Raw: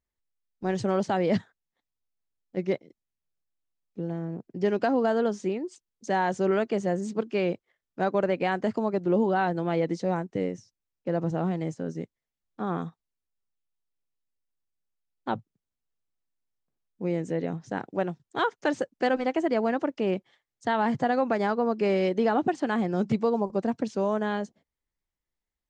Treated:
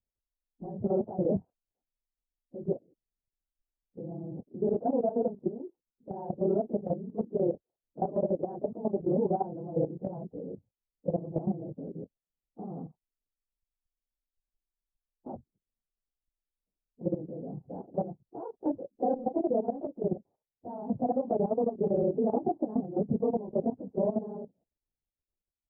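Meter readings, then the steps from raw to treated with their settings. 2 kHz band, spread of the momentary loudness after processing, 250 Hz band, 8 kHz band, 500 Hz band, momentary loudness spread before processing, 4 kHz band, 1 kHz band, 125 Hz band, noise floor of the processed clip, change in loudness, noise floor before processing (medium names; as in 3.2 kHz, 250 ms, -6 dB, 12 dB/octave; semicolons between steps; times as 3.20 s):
under -40 dB, 15 LU, -4.5 dB, no reading, -3.5 dB, 10 LU, under -40 dB, -8.0 dB, -4.0 dB, under -85 dBFS, -4.0 dB, under -85 dBFS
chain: phase randomisation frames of 50 ms; steep low-pass 770 Hz 36 dB/octave; level held to a coarse grid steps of 13 dB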